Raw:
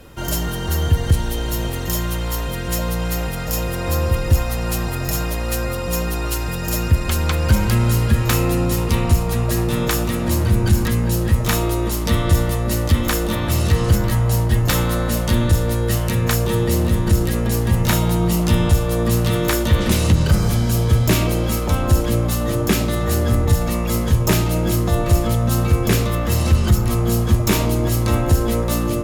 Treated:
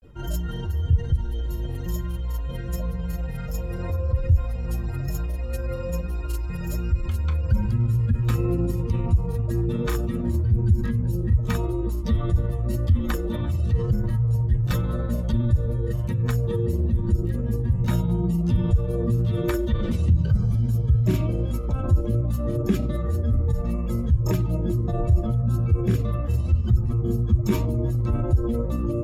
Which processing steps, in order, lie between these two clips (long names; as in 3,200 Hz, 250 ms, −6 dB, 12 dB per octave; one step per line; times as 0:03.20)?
expanding power law on the bin magnitudes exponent 1.7
granular cloud 102 ms, spray 21 ms, pitch spread up and down by 0 semitones
level −3.5 dB